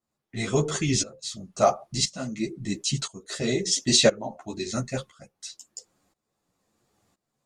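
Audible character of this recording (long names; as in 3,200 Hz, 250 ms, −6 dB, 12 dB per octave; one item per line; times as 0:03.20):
tremolo saw up 0.98 Hz, depth 90%
a shimmering, thickened sound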